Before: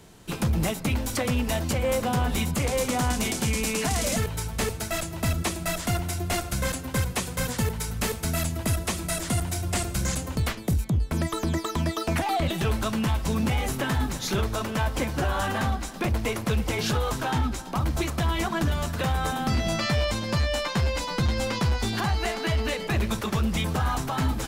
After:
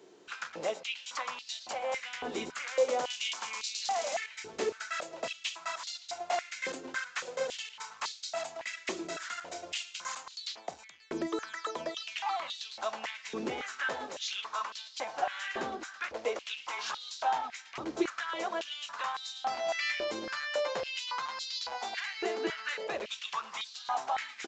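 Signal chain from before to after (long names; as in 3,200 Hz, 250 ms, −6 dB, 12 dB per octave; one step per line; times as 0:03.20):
downsampling to 16,000 Hz
high-pass on a step sequencer 3.6 Hz 370–4,100 Hz
level −9 dB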